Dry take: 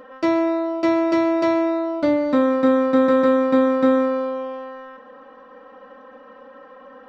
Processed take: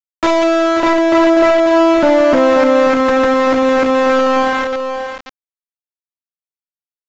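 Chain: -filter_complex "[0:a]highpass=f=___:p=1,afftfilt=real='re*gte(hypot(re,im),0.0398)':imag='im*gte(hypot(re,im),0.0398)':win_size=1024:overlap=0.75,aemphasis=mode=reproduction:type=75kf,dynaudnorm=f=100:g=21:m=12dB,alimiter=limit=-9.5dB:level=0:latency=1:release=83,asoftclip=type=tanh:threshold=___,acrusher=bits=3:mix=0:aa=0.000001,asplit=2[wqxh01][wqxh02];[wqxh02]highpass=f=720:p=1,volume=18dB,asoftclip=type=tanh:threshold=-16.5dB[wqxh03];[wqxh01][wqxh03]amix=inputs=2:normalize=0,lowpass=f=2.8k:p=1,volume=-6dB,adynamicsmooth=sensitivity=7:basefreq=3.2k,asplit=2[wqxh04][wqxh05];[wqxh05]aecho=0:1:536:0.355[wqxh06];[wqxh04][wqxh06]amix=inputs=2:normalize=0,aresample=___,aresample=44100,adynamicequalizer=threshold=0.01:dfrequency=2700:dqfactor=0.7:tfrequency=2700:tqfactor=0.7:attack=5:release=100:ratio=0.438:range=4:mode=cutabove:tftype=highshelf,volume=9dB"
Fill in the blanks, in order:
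380, -16.5dB, 16000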